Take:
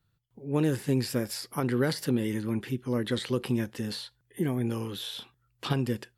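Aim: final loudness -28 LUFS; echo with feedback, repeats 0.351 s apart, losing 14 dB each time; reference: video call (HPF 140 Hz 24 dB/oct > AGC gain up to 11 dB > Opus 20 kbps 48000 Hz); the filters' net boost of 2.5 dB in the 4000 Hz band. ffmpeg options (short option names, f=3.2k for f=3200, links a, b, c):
-af "highpass=f=140:w=0.5412,highpass=f=140:w=1.3066,equalizer=f=4k:t=o:g=3,aecho=1:1:351|702:0.2|0.0399,dynaudnorm=m=11dB,volume=3.5dB" -ar 48000 -c:a libopus -b:a 20k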